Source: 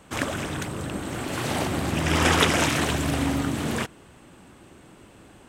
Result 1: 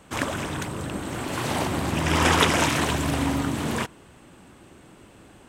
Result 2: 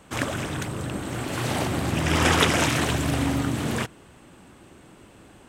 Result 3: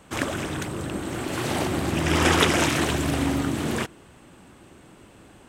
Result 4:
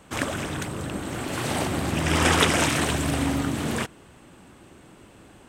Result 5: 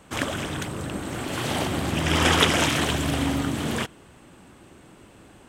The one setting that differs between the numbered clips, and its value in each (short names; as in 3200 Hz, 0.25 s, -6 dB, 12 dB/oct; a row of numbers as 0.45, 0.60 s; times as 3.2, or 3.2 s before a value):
dynamic EQ, frequency: 980, 120, 350, 8600, 3200 Hz